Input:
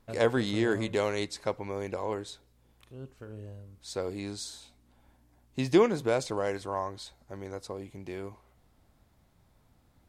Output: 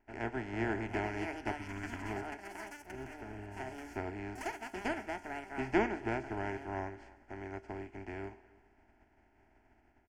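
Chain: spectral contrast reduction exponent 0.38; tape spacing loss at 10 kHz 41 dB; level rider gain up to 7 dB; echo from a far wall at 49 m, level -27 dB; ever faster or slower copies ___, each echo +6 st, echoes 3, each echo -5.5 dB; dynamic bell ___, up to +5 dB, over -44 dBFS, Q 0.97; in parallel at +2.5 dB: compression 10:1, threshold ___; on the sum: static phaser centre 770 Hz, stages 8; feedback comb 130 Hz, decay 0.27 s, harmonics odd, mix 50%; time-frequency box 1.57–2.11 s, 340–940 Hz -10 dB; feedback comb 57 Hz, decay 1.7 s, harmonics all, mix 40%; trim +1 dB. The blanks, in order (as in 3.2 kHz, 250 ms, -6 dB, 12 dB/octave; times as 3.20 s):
793 ms, 110 Hz, -39 dBFS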